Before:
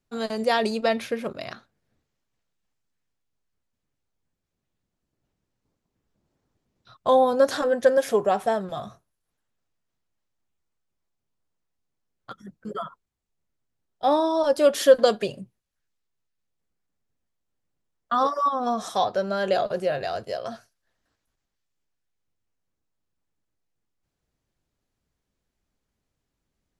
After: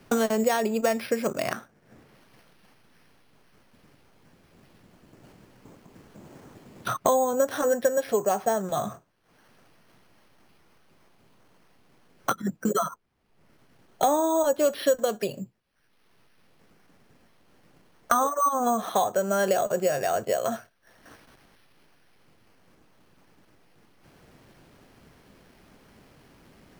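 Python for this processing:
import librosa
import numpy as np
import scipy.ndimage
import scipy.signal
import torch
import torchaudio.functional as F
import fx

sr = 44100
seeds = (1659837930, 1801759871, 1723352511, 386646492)

y = np.repeat(scipy.signal.resample_poly(x, 1, 6), 6)[:len(x)]
y = fx.band_squash(y, sr, depth_pct=100)
y = F.gain(torch.from_numpy(y), -1.5).numpy()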